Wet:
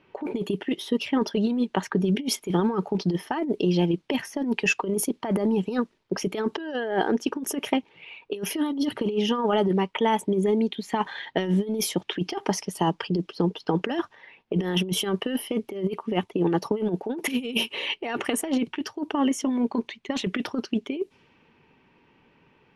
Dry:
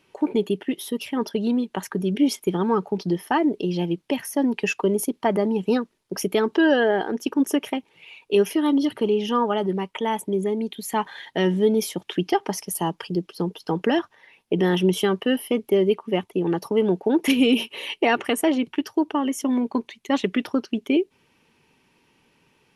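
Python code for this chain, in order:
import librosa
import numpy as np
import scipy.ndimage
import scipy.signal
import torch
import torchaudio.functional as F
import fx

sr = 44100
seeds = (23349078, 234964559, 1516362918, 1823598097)

y = fx.env_lowpass(x, sr, base_hz=2400.0, full_db=-17.0)
y = fx.over_compress(y, sr, threshold_db=-23.0, ratio=-0.5)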